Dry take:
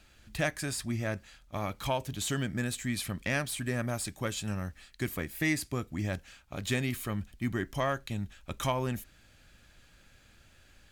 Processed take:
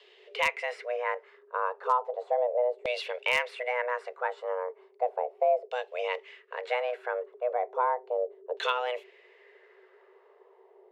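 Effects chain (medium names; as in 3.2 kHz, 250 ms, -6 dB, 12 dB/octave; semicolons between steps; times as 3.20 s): frequency shift +370 Hz; LFO low-pass saw down 0.35 Hz 550–3400 Hz; wavefolder -14 dBFS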